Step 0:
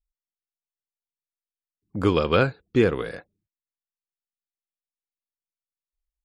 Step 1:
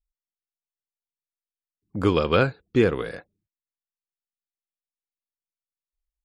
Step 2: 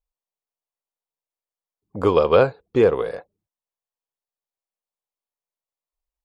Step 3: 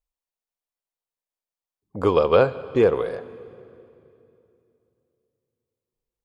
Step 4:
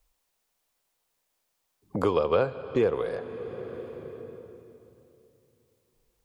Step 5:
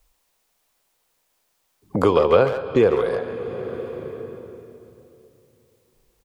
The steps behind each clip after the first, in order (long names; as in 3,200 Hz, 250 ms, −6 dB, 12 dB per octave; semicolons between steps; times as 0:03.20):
no processing that can be heard
flat-topped bell 680 Hz +10 dB; level −2.5 dB
convolution reverb RT60 2.8 s, pre-delay 69 ms, DRR 16 dB; level −1.5 dB
multiband upward and downward compressor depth 70%; level −5.5 dB
far-end echo of a speakerphone 140 ms, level −8 dB; level +7.5 dB